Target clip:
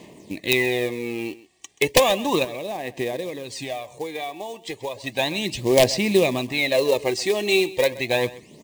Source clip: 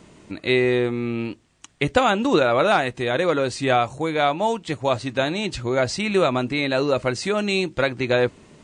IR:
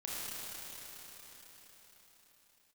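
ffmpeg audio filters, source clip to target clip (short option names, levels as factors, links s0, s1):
-filter_complex "[0:a]highpass=f=310:p=1,equalizer=f=1000:w=2.1:g=-3,asettb=1/sr,asplit=3[s0][s1][s2];[s0]atrim=end=2.444[s3];[s1]atrim=start=2.44:end=5.04,asetpts=PTS-STARTPTS,afade=t=in:d=0.004:c=qsin,afade=t=out:st=2.596:d=0.004:c=qsin,acompressor=threshold=0.0355:ratio=16[s4];[s2]atrim=start=5.036[s5];[s3][s4]acrossfade=d=0.004:c1=hsin:c2=qsin[s6];[s6][s5]acrossfade=d=0.004:c1=qsin:c2=hsin,aphaser=in_gain=1:out_gain=1:delay=2.7:decay=0.55:speed=0.34:type=sinusoidal,acrusher=bits=4:mode=log:mix=0:aa=0.000001,aeval=exprs='(mod(2.37*val(0)+1,2)-1)/2.37':c=same,asuperstop=centerf=1400:order=4:qfactor=2.2,aecho=1:1:130:0.119,volume=1.12"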